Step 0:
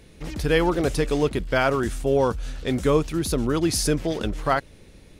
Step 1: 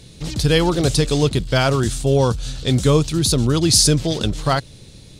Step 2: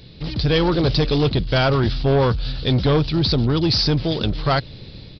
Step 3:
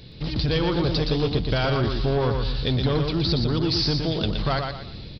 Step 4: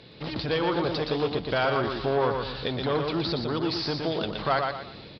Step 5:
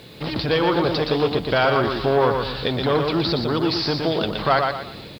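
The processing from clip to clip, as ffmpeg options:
-af "equalizer=f=125:t=o:w=1:g=11,equalizer=f=2000:t=o:w=1:g=-4,equalizer=f=4000:t=o:w=1:g=11,equalizer=f=8000:t=o:w=1:g=9,volume=1.26"
-af "dynaudnorm=f=360:g=3:m=3.76,aresample=11025,asoftclip=type=tanh:threshold=0.251,aresample=44100"
-af "acompressor=threshold=0.1:ratio=6,aecho=1:1:119|238|357|476:0.562|0.186|0.0612|0.0202,volume=0.891"
-af "alimiter=limit=0.158:level=0:latency=1:release=231,bandpass=f=1000:t=q:w=0.58:csg=0,volume=1.58"
-af "acrusher=bits=9:mix=0:aa=0.000001,volume=2.11"

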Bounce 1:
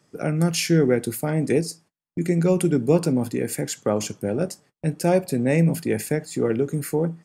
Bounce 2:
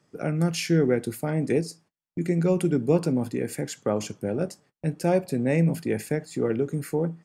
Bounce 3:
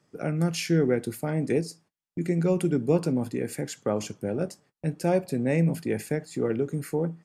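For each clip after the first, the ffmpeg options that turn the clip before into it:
-af "highshelf=f=6100:g=-7,volume=0.708"
-af "volume=0.891" -ar 32000 -c:a libmp3lame -b:a 96k

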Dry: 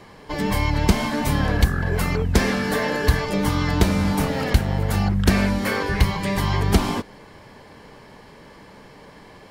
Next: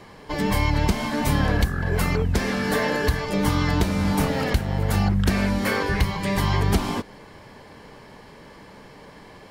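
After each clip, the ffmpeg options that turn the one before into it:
-af "alimiter=limit=0.335:level=0:latency=1:release=340"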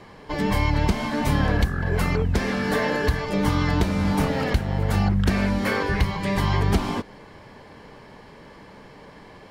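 -af "highshelf=f=6600:g=-8"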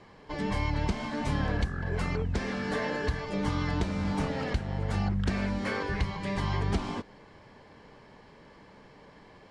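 -af "lowpass=f=8500:w=0.5412,lowpass=f=8500:w=1.3066,volume=0.398"

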